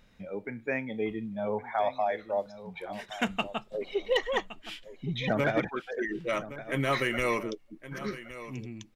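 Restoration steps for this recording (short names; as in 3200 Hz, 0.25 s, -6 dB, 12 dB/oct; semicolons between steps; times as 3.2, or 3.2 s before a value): clip repair -17.5 dBFS; inverse comb 1.117 s -14.5 dB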